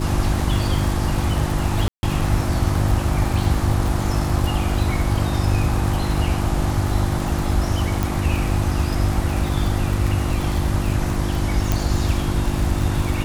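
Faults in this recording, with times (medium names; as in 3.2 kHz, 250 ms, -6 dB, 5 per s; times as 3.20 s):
crackle 100 per s -24 dBFS
hum 50 Hz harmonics 7 -25 dBFS
1.88–2.03 s: dropout 151 ms
8.03 s: pop
11.72 s: pop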